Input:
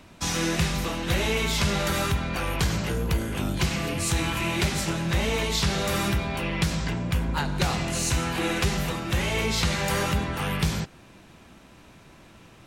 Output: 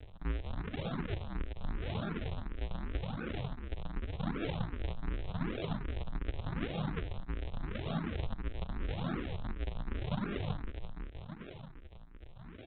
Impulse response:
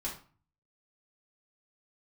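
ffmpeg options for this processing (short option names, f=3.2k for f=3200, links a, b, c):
-filter_complex "[0:a]bandreject=f=60:t=h:w=6,bandreject=f=120:t=h:w=6,bandreject=f=180:t=h:w=6,bandreject=f=240:t=h:w=6,bandreject=f=300:t=h:w=6,bandreject=f=360:t=h:w=6,bandreject=f=420:t=h:w=6,bandreject=f=480:t=h:w=6,bandreject=f=540:t=h:w=6,bandreject=f=600:t=h:w=6,aecho=1:1:1.4:0.75,acrossover=split=260|970[a][b][c];[a]acompressor=threshold=-36dB:ratio=4[d];[b]acompressor=threshold=-43dB:ratio=4[e];[c]acompressor=threshold=-38dB:ratio=4[f];[d][e][f]amix=inputs=3:normalize=0,highpass=f=170:w=0.5412,highpass=f=170:w=1.3066,equalizer=f=200:t=q:w=4:g=-6,equalizer=f=290:t=q:w=4:g=-5,equalizer=f=450:t=q:w=4:g=-6,equalizer=f=720:t=q:w=4:g=-3,equalizer=f=1k:t=q:w=4:g=-5,equalizer=f=2.7k:t=q:w=4:g=4,lowpass=f=2.9k:w=0.5412,lowpass=f=2.9k:w=1.3066,acrossover=split=310[g][h];[h]asoftclip=type=hard:threshold=-39dB[i];[g][i]amix=inputs=2:normalize=0,asplit=2[j][k];[k]adelay=324,lowpass=f=860:p=1,volume=-5.5dB,asplit=2[l][m];[m]adelay=324,lowpass=f=860:p=1,volume=0.55,asplit=2[n][o];[o]adelay=324,lowpass=f=860:p=1,volume=0.55,asplit=2[p][q];[q]adelay=324,lowpass=f=860:p=1,volume=0.55,asplit=2[r][s];[s]adelay=324,lowpass=f=860:p=1,volume=0.55,asplit=2[t][u];[u]adelay=324,lowpass=f=860:p=1,volume=0.55,asplit=2[v][w];[w]adelay=324,lowpass=f=860:p=1,volume=0.55[x];[j][l][n][p][r][t][v][x]amix=inputs=8:normalize=0,aresample=8000,acrusher=samples=40:mix=1:aa=0.000001:lfo=1:lforange=64:lforate=0.85,aresample=44100,asplit=2[y][z];[z]afreqshift=2.7[aa];[y][aa]amix=inputs=2:normalize=1,volume=7dB"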